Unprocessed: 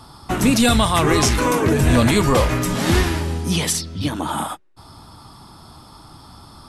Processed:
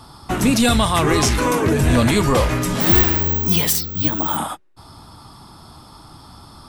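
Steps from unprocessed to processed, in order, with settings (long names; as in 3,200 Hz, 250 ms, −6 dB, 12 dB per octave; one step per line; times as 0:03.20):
in parallel at −9 dB: soft clipping −15.5 dBFS, distortion −12 dB
0:02.80–0:04.37: on the sum: bad sample-rate conversion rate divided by 2×, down filtered, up zero stuff
level −2 dB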